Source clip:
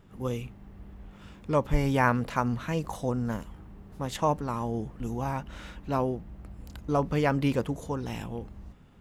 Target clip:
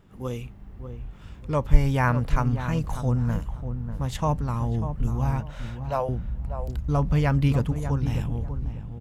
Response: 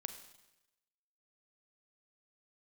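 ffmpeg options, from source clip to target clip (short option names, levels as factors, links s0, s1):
-filter_complex "[0:a]asettb=1/sr,asplit=3[s0][s1][s2];[s0]atrim=end=5.404[s3];[s1]atrim=start=5.4:end=6.09,asetpts=PTS-STARTPTS,afade=t=in:d=0.004:c=qsin,afade=t=out:st=0.686:d=0.004:c=qsin,lowshelf=f=380:t=q:w=3:g=-13[s4];[s2]atrim=start=6.086[s5];[s3][s4]acrossfade=d=0.004:c1=hsin:c2=qsin[s6];[s6][s5]acrossfade=d=0.004:c1=qsin:c2=hsin,asplit=2[s7][s8];[s8]adelay=593,lowpass=f=1100:p=1,volume=0.376,asplit=2[s9][s10];[s10]adelay=593,lowpass=f=1100:p=1,volume=0.26,asplit=2[s11][s12];[s12]adelay=593,lowpass=f=1100:p=1,volume=0.26[s13];[s7][s9][s11][s13]amix=inputs=4:normalize=0,asubboost=boost=6:cutoff=140"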